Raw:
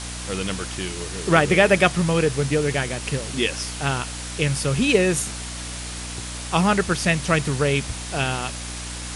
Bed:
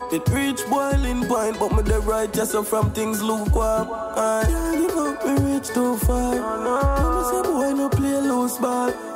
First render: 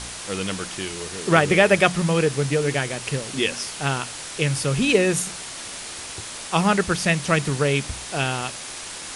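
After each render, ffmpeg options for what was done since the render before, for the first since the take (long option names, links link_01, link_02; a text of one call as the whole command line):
ffmpeg -i in.wav -af "bandreject=frequency=60:width_type=h:width=4,bandreject=frequency=120:width_type=h:width=4,bandreject=frequency=180:width_type=h:width=4,bandreject=frequency=240:width_type=h:width=4,bandreject=frequency=300:width_type=h:width=4" out.wav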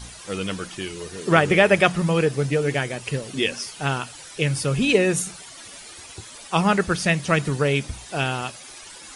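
ffmpeg -i in.wav -af "afftdn=noise_reduction=12:noise_floor=-35" out.wav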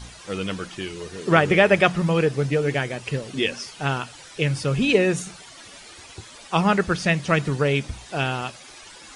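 ffmpeg -i in.wav -filter_complex "[0:a]acrossover=split=8900[link_01][link_02];[link_02]acompressor=threshold=-57dB:ratio=4:attack=1:release=60[link_03];[link_01][link_03]amix=inputs=2:normalize=0,highshelf=frequency=6300:gain=-5" out.wav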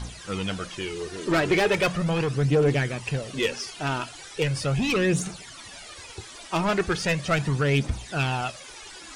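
ffmpeg -i in.wav -af "asoftclip=type=tanh:threshold=-18.5dB,aphaser=in_gain=1:out_gain=1:delay=3.3:decay=0.48:speed=0.38:type=triangular" out.wav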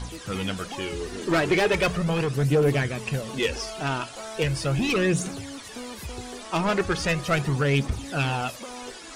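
ffmpeg -i in.wav -i bed.wav -filter_complex "[1:a]volume=-18dB[link_01];[0:a][link_01]amix=inputs=2:normalize=0" out.wav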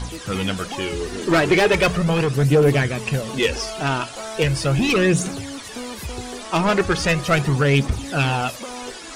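ffmpeg -i in.wav -af "volume=5.5dB" out.wav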